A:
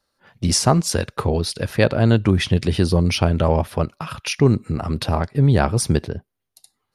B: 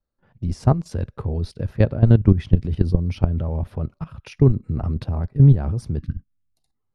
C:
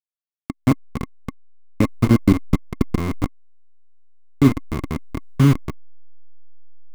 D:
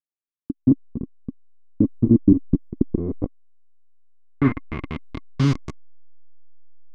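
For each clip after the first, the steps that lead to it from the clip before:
time-frequency box 5.99–6.54 s, 320–1100 Hz -27 dB; level held to a coarse grid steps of 14 dB; tilt EQ -4 dB/octave; trim -6 dB
send-on-delta sampling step -14 dBFS; small resonant body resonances 270/1100/2100 Hz, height 15 dB, ringing for 30 ms; trim -6 dB
low-pass sweep 310 Hz -> 6.7 kHz, 2.77–5.72 s; trim -5 dB

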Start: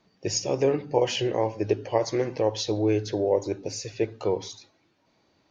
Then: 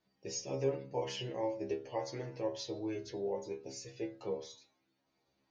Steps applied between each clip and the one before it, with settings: inharmonic resonator 65 Hz, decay 0.41 s, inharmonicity 0.002; trim -3.5 dB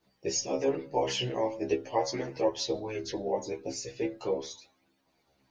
chorus voices 2, 0.41 Hz, delay 15 ms, depth 4 ms; harmonic-percussive split percussive +9 dB; trim +6.5 dB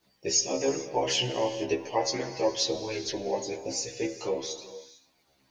treble shelf 2.1 kHz +7.5 dB; gated-style reverb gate 480 ms flat, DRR 10.5 dB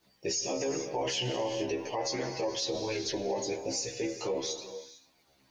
peak limiter -24.5 dBFS, peak gain reduction 11.5 dB; trim +1 dB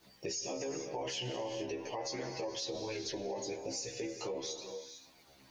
compression 2:1, threshold -52 dBFS, peak gain reduction 13 dB; trim +5.5 dB

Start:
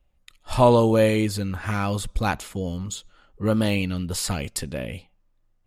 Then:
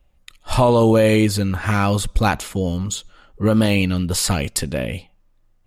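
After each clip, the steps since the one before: peak limiter -12.5 dBFS, peak gain reduction 8.5 dB; trim +7 dB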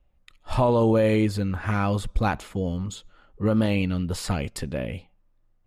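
treble shelf 3.8 kHz -11.5 dB; trim -5.5 dB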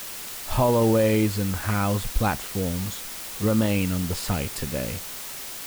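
added noise white -36 dBFS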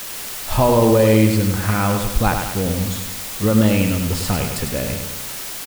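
feedback delay 101 ms, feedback 51%, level -6 dB; trim +5 dB

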